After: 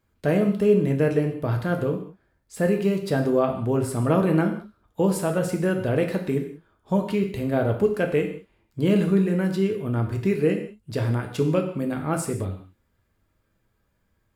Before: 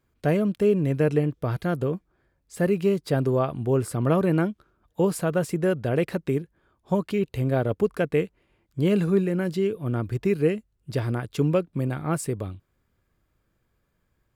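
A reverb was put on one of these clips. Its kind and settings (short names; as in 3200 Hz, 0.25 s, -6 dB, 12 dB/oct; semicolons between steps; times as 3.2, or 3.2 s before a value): non-linear reverb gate 0.22 s falling, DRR 3 dB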